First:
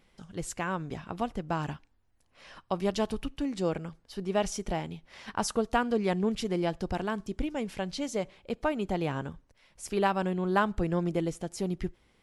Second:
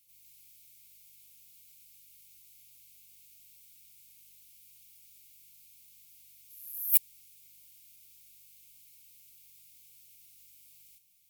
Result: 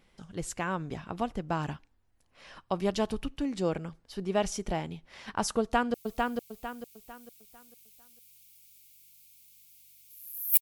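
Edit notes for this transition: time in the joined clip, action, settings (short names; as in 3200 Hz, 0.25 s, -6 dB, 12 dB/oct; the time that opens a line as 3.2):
first
5.6–5.94 echo throw 0.45 s, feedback 35%, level -3 dB
5.94 switch to second from 2.34 s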